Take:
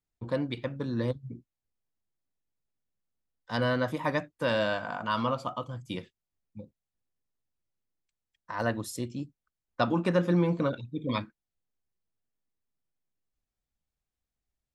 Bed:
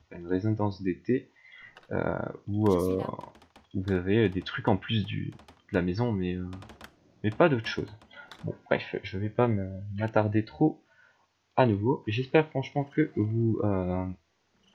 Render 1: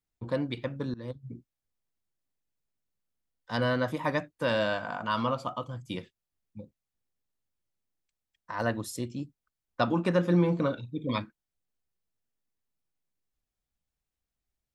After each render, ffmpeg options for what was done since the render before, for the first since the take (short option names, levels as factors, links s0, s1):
-filter_complex "[0:a]asettb=1/sr,asplit=3[s0][s1][s2];[s0]atrim=end=10.274[s3];[s1]atrim=start=10.27:end=10.94,asetpts=PTS-STARTPTS,afade=t=in:d=0.004:c=qsin,afade=t=out:st=0.666:d=0.004:c=qsin,asplit=2[s4][s5];[s5]adelay=40,volume=0.224[s6];[s4][s6]amix=inputs=2:normalize=0,atrim=end_sample=29547[s7];[s2]atrim=start=10.936[s8];[s3][s7]acrossfade=d=0.004:c1=hsin:c2=qsin[s9];[s9][s8]acrossfade=d=0.004:c1=qsin:c2=hsin,asplit=2[s10][s11];[s10]atrim=end=0.94,asetpts=PTS-STARTPTS,afade=t=out:st=0.936:d=0.004:c=hsin:silence=0.0841395[s12];[s11]atrim=start=0.94,asetpts=PTS-STARTPTS,afade=t=in:d=0.41:silence=0.0841395[s13];[s12][s13]concat=n=2:v=0:a=1"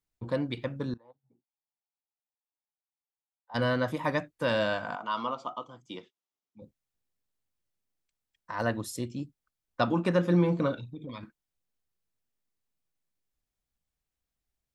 -filter_complex "[0:a]asplit=3[s0][s1][s2];[s0]afade=t=out:st=0.96:d=0.02[s3];[s1]bandpass=f=830:t=q:w=6.3,afade=t=in:st=0.96:d=0.02,afade=t=out:st=3.54:d=0.02[s4];[s2]afade=t=in:st=3.54:d=0.02[s5];[s3][s4][s5]amix=inputs=3:normalize=0,asettb=1/sr,asplit=3[s6][s7][s8];[s6]atrim=end=4.954[s9];[s7]atrim=start=4.95:end=6.62,asetpts=PTS-STARTPTS,afade=t=in:d=0.004:c=qsin,afade=t=out:st=1.666:d=0.004:c=qsin,highpass=340,equalizer=f=550:t=q:w=4:g=-7,equalizer=f=1700:t=q:w=4:g=-10,equalizer=f=2500:t=q:w=4:g=-6,equalizer=f=4500:t=q:w=4:g=-8,lowpass=f=6300:w=0.5412,lowpass=f=6300:w=1.3066[s10];[s8]atrim=start=6.616[s11];[s9][s10]acrossfade=d=0.004:c1=hsin:c2=qsin[s12];[s12][s11]acrossfade=d=0.004:c1=qsin:c2=hsin,asettb=1/sr,asplit=3[s13][s14][s15];[s13]atrim=end=10.834[s16];[s14]atrim=start=10.83:end=11.23,asetpts=PTS-STARTPTS,afade=t=in:d=0.004:c=qsin,afade=t=out:st=0.396:d=0.004:c=qsin,acompressor=threshold=0.0141:ratio=6:attack=3.2:release=140:knee=1:detection=peak[s17];[s15]atrim=start=11.226[s18];[s16][s17]acrossfade=d=0.004:c1=hsin:c2=qsin[s19];[s19][s18]acrossfade=d=0.004:c1=qsin:c2=hsin"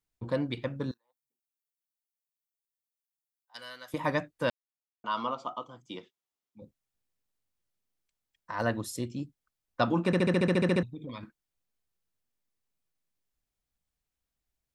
-filter_complex "[0:a]asettb=1/sr,asplit=3[s0][s1][s2];[s0]atrim=end=0.914[s3];[s1]atrim=start=0.91:end=3.94,asetpts=PTS-STARTPTS,afade=t=in:d=0.004:c=qsin,afade=t=out:st=3.026:d=0.004:c=qsin,aderivative[s4];[s2]atrim=start=3.936[s5];[s3][s4]acrossfade=d=0.004:c1=hsin:c2=qsin[s6];[s6][s5]acrossfade=d=0.004:c1=qsin:c2=hsin,asplit=14[s7][s8][s9][s10][s11][s12][s13][s14][s15][s16][s17][s18][s19][s20];[s7]atrim=end=4.5,asetpts=PTS-STARTPTS,afade=t=out:st=4.496:d=0.004:c=hsin[s21];[s8]atrim=start=4.5:end=5.04,asetpts=PTS-STARTPTS,volume=0[s22];[s9]atrim=start=5.04:end=10.132,asetpts=PTS-STARTPTS,afade=t=in:d=0.004:c=hsin[s23];[s10]atrim=start=10.058:end=10.132[s24];[s11]atrim=start=10.058:end=10.132[s25];[s12]atrim=start=10.058:end=10.132[s26];[s13]atrim=start=10.058:end=10.132[s27];[s14]atrim=start=10.058:end=10.132[s28];[s15]atrim=start=10.058:end=10.132[s29];[s16]atrim=start=10.058:end=10.132[s30];[s17]atrim=start=10.058:end=10.132[s31];[s18]atrim=start=10.058:end=10.132[s32];[s19]atrim=start=10.058:end=10.132[s33];[s20]atrim=start=10.828[s34];[s21][s22][s23]concat=n=3:v=0:a=1[s35];[s35][s24]acrossfade=d=0.004:c1=hsin:c2=hsin[s36];[s36][s25]acrossfade=d=0.004:c1=hsin:c2=hsin[s37];[s37][s26]acrossfade=d=0.004:c1=hsin:c2=hsin[s38];[s38][s27]acrossfade=d=0.004:c1=hsin:c2=hsin[s39];[s39][s28]acrossfade=d=0.004:c1=hsin:c2=hsin[s40];[s40][s29]acrossfade=d=0.004:c1=hsin:c2=hsin[s41];[s41][s30]acrossfade=d=0.004:c1=hsin:c2=hsin[s42];[s42][s31]acrossfade=d=0.004:c1=hsin:c2=hsin[s43];[s43][s32]acrossfade=d=0.004:c1=hsin:c2=hsin[s44];[s44][s33]acrossfade=d=0.004:c1=hsin:c2=hsin[s45];[s45][s34]acrossfade=d=0.004:c1=hsin:c2=hsin"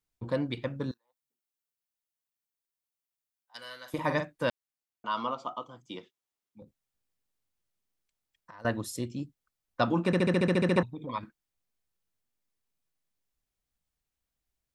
-filter_complex "[0:a]asettb=1/sr,asplit=3[s0][s1][s2];[s0]atrim=end=3.584[s3];[s1]atrim=start=3.58:end=4.44,asetpts=PTS-STARTPTS,afade=t=in:d=0.004:c=qsin,afade=t=out:st=0.856:d=0.004:c=qsin,asplit=2[s4][s5];[s5]adelay=46,volume=0.376[s6];[s4][s6]amix=inputs=2:normalize=0,atrim=end_sample=37926[s7];[s2]atrim=start=4.436[s8];[s3][s7]acrossfade=d=0.004:c1=hsin:c2=qsin[s9];[s9][s8]acrossfade=d=0.004:c1=qsin:c2=hsin,asettb=1/sr,asplit=3[s10][s11][s12];[s10]atrim=end=6.624[s13];[s11]atrim=start=6.62:end=8.65,asetpts=PTS-STARTPTS,afade=t=in:d=0.004:c=qsin,afade=t=out:st=2.026:d=0.004:c=qsin,acompressor=threshold=0.00447:ratio=6:attack=3.2:release=140:knee=1:detection=peak[s14];[s12]atrim=start=8.646[s15];[s13][s14]acrossfade=d=0.004:c1=hsin:c2=qsin[s16];[s16][s15]acrossfade=d=0.004:c1=qsin:c2=hsin,asettb=1/sr,asplit=3[s17][s18][s19];[s17]atrim=end=10.774[s20];[s18]atrim=start=10.77:end=11.19,asetpts=PTS-STARTPTS,afade=t=in:d=0.004:c=qsin,afade=t=out:st=0.416:d=0.004:c=qsin,equalizer=f=950:t=o:w=1.1:g=14.5[s21];[s19]atrim=start=11.186[s22];[s20][s21]acrossfade=d=0.004:c1=hsin:c2=qsin[s23];[s23][s22]acrossfade=d=0.004:c1=qsin:c2=hsin"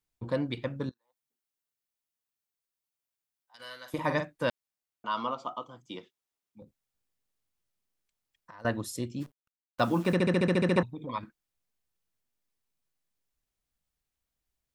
-filter_complex "[0:a]asettb=1/sr,asplit=3[s0][s1][s2];[s0]atrim=end=0.894[s3];[s1]atrim=start=0.89:end=3.6,asetpts=PTS-STARTPTS,afade=t=in:d=0.004:c=qsin,afade=t=out:st=2.706:d=0.004:c=qsin,acompressor=threshold=0.00224:ratio=3:attack=3.2:release=140:knee=1:detection=peak[s4];[s2]atrim=start=3.596[s5];[s3][s4]acrossfade=d=0.004:c1=hsin:c2=qsin[s6];[s6][s5]acrossfade=d=0.004:c1=qsin:c2=hsin,asplit=3[s7][s8][s9];[s7]afade=t=out:st=9.2:d=0.02[s10];[s8]acrusher=bits=9:dc=4:mix=0:aa=0.000001,afade=t=in:st=9.2:d=0.02,afade=t=out:st=10.13:d=0.02[s11];[s9]afade=t=in:st=10.13:d=0.02[s12];[s10][s11][s12]amix=inputs=3:normalize=0"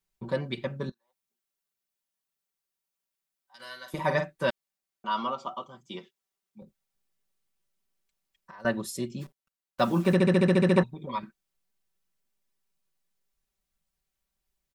-af "aecho=1:1:5.2:0.78"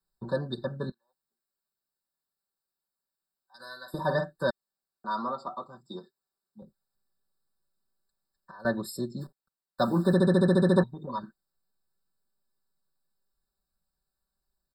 -filter_complex "[0:a]acrossover=split=380|830|1600[s0][s1][s2][s3];[s2]asoftclip=type=tanh:threshold=0.0211[s4];[s0][s1][s4][s3]amix=inputs=4:normalize=0,afftfilt=real='re*eq(mod(floor(b*sr/1024/1800),2),0)':imag='im*eq(mod(floor(b*sr/1024/1800),2),0)':win_size=1024:overlap=0.75"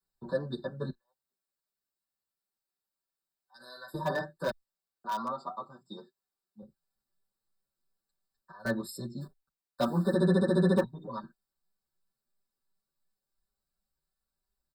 -filter_complex "[0:a]acrossover=split=110|1200|1600[s0][s1][s2][s3];[s2]aeval=exprs='(mod(53.1*val(0)+1,2)-1)/53.1':c=same[s4];[s0][s1][s4][s3]amix=inputs=4:normalize=0,asplit=2[s5][s6];[s6]adelay=7.6,afreqshift=2.9[s7];[s5][s7]amix=inputs=2:normalize=1"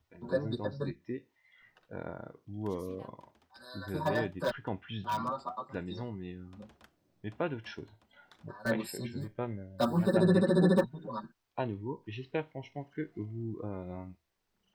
-filter_complex "[1:a]volume=0.251[s0];[0:a][s0]amix=inputs=2:normalize=0"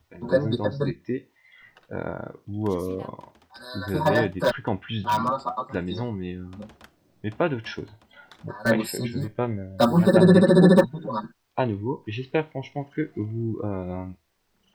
-af "volume=3.16"